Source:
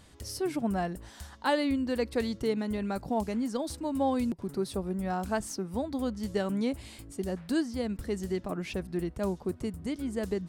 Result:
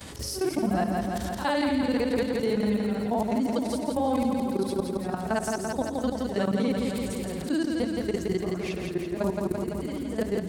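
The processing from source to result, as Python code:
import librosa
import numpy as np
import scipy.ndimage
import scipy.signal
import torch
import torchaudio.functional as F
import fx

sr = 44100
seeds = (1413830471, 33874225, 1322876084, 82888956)

y = fx.frame_reverse(x, sr, frame_ms=144.0)
y = scipy.signal.sosfilt(scipy.signal.butter(2, 64.0, 'highpass', fs=sr, output='sos'), y)
y = fx.level_steps(y, sr, step_db=17)
y = fx.echo_feedback(y, sr, ms=169, feedback_pct=58, wet_db=-5.5)
y = fx.env_flatten(y, sr, amount_pct=50)
y = y * 10.0 ** (7.5 / 20.0)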